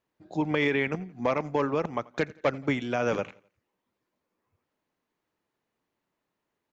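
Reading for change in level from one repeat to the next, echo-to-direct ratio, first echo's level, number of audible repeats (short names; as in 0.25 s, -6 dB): -7.5 dB, -22.0 dB, -23.0 dB, 2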